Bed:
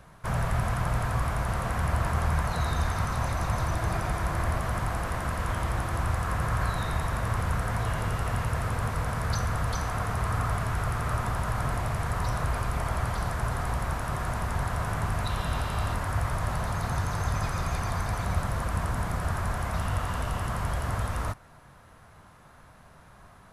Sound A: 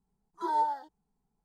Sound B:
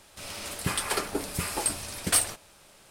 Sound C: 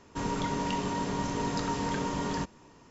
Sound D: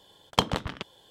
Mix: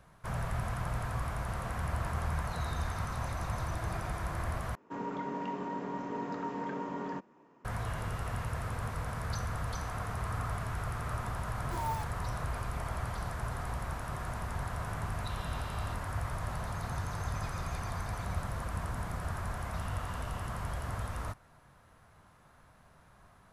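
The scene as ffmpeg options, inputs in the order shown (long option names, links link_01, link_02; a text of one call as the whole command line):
ffmpeg -i bed.wav -i cue0.wav -i cue1.wav -i cue2.wav -filter_complex "[0:a]volume=-7.5dB[link_01];[3:a]acrossover=split=160 2100:gain=0.0631 1 0.112[link_02][link_03][link_04];[link_02][link_03][link_04]amix=inputs=3:normalize=0[link_05];[1:a]acrusher=bits=7:dc=4:mix=0:aa=0.000001[link_06];[link_01]asplit=2[link_07][link_08];[link_07]atrim=end=4.754[link_09];[link_05]atrim=end=2.9,asetpts=PTS-STARTPTS,volume=-4.5dB[link_10];[link_08]atrim=start=7.646[link_11];[link_06]atrim=end=1.44,asetpts=PTS-STARTPTS,volume=-9dB,afade=type=in:duration=0.004:curve=hsin,afade=type=out:start_time=1.436:duration=0.004:curve=hsin,adelay=11290[link_12];[link_09][link_10]acrossfade=duration=0.004:curve1=hsin:curve2=hsin[link_13];[link_13][link_11]acrossfade=duration=0.004:curve1=hsin:curve2=hsin[link_14];[link_14][link_12]amix=inputs=2:normalize=0" out.wav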